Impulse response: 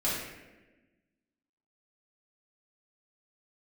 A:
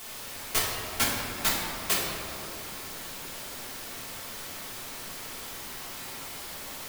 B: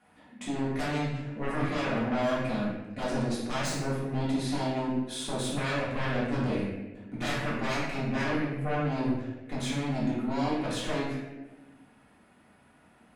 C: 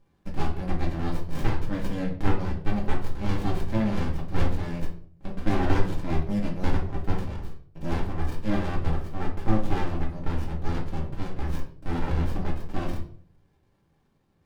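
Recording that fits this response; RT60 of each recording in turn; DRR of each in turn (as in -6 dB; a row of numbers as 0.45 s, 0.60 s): B; 2.8 s, 1.2 s, 0.55 s; -5.5 dB, -9.5 dB, -2.5 dB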